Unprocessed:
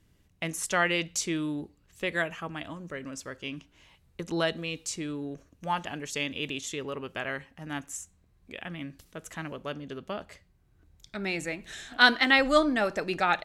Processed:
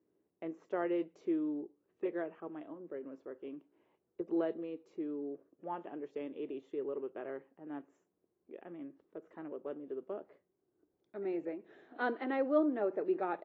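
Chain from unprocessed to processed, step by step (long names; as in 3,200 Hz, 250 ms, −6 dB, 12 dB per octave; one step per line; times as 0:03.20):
four-pole ladder band-pass 420 Hz, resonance 55%
level +5 dB
AAC 24 kbit/s 24,000 Hz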